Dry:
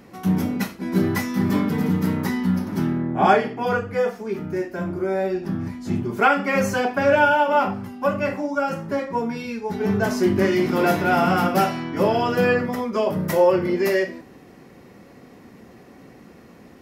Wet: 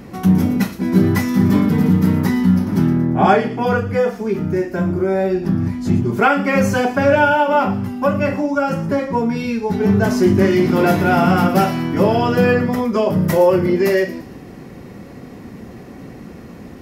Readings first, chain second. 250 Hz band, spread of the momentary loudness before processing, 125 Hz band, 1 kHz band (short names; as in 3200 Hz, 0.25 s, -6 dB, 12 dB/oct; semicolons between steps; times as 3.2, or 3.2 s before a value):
+7.0 dB, 9 LU, +8.5 dB, +3.0 dB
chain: low shelf 230 Hz +9 dB; in parallel at +1.5 dB: compressor, threshold -26 dBFS, peak gain reduction 15.5 dB; on the sum: thin delay 0.115 s, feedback 45%, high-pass 3800 Hz, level -11.5 dB